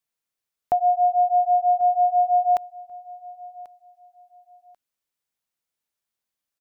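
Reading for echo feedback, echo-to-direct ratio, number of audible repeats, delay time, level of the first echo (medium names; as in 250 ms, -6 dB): 24%, -20.5 dB, 2, 1089 ms, -20.5 dB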